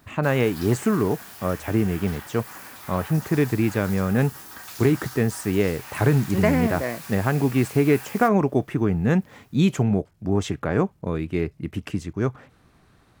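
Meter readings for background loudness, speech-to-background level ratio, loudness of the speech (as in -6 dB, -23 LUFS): -38.5 LUFS, 15.0 dB, -23.5 LUFS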